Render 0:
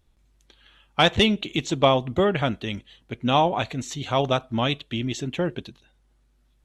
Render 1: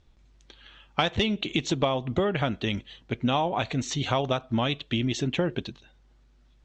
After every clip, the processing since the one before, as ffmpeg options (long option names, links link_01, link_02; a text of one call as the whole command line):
ffmpeg -i in.wav -af "lowpass=frequency=6700:width=0.5412,lowpass=frequency=6700:width=1.3066,acompressor=threshold=-26dB:ratio=6,volume=4dB" out.wav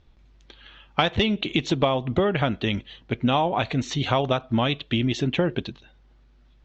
ffmpeg -i in.wav -af "lowpass=4700,volume=3.5dB" out.wav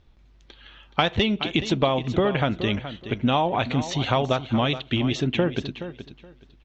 ffmpeg -i in.wav -af "aecho=1:1:423|846|1269:0.251|0.0502|0.01" out.wav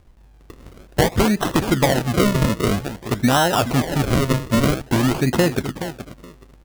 ffmpeg -i in.wav -af "acrusher=samples=38:mix=1:aa=0.000001:lfo=1:lforange=38:lforate=0.51,asoftclip=type=tanh:threshold=-11.5dB,volume=6dB" out.wav